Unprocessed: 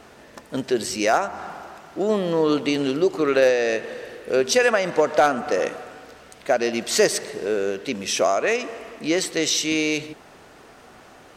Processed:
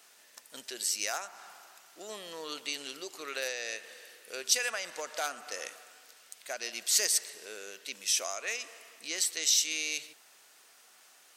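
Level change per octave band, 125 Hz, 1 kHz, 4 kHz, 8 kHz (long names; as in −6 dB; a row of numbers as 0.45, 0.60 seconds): below −30 dB, −18.0 dB, −5.0 dB, −1.0 dB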